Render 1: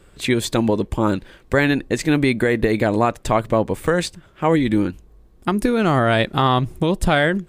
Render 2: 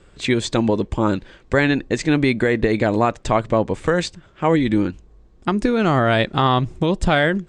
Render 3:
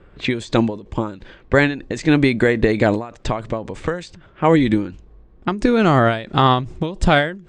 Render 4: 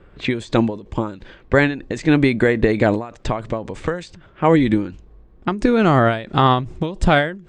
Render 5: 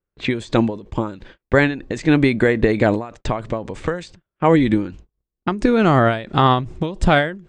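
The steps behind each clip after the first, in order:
Butterworth low-pass 7,900 Hz 36 dB per octave
low-pass that shuts in the quiet parts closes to 2,100 Hz, open at −14 dBFS; every ending faded ahead of time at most 120 dB per second; level +3 dB
dynamic equaliser 5,700 Hz, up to −4 dB, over −38 dBFS, Q 0.75
noise gate −39 dBFS, range −37 dB

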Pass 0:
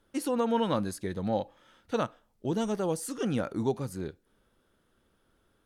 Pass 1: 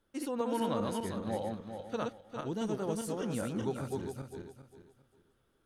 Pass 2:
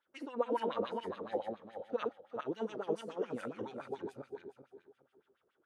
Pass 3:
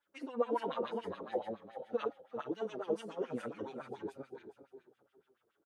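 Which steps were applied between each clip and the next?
feedback delay that plays each chunk backwards 201 ms, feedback 51%, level −2 dB; level −7 dB
auto-filter band-pass sine 7.1 Hz 360–2,800 Hz; level +5 dB
barber-pole flanger 6.5 ms −2 Hz; level +2.5 dB

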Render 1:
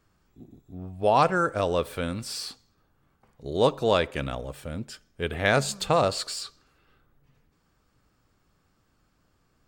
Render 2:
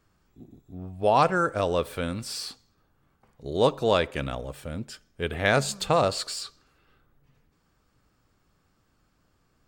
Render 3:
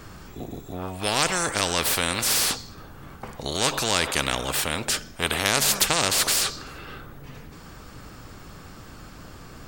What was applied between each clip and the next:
no processing that can be heard
every bin compressed towards the loudest bin 4 to 1; level +5.5 dB

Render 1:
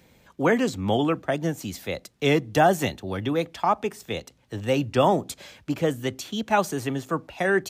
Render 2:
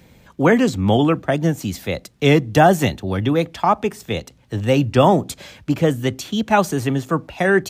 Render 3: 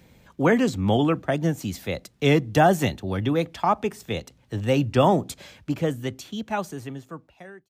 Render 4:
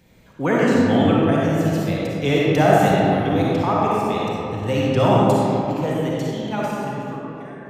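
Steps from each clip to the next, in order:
bass and treble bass +5 dB, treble −1 dB; level +5.5 dB
fade-out on the ending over 2.51 s; level −5 dB
comb and all-pass reverb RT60 3.1 s, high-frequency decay 0.45×, pre-delay 15 ms, DRR −6 dB; level −2.5 dB

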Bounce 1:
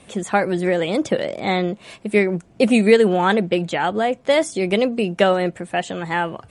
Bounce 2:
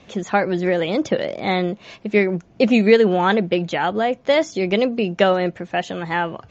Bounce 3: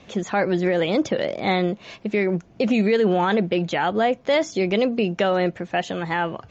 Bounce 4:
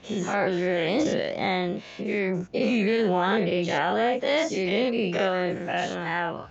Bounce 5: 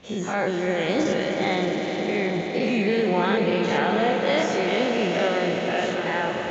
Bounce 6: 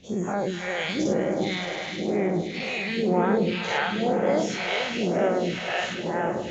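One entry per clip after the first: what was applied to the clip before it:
Butterworth low-pass 6,900 Hz 96 dB per octave
brickwall limiter −11.5 dBFS, peak gain reduction 9 dB
every bin's largest magnitude spread in time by 120 ms; level −8 dB
echo that builds up and dies away 103 ms, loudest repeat 5, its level −11 dB
all-pass phaser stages 2, 1 Hz, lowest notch 230–3,800 Hz

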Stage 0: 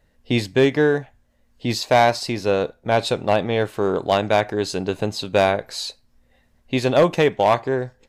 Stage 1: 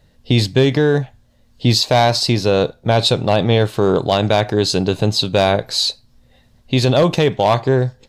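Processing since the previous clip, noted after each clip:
octave-band graphic EQ 125/2,000/4,000 Hz +8/−4/+7 dB
brickwall limiter −11 dBFS, peak gain reduction 6.5 dB
level +6 dB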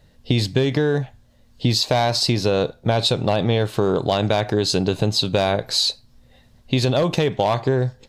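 downward compressor, threshold −15 dBFS, peak gain reduction 6.5 dB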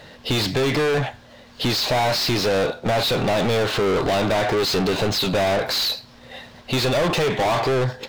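running median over 5 samples
mid-hump overdrive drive 35 dB, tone 4,200 Hz, clips at −6 dBFS
level −7.5 dB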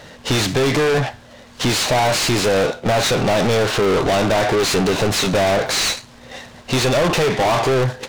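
short delay modulated by noise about 1,900 Hz, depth 0.033 ms
level +3.5 dB

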